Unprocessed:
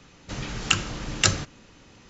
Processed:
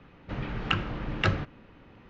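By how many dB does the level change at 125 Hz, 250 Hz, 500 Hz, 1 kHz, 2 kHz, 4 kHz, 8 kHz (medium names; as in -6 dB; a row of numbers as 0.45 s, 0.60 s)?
0.0 dB, 0.0 dB, 0.0 dB, -1.0 dB, -3.5 dB, -9.0 dB, no reading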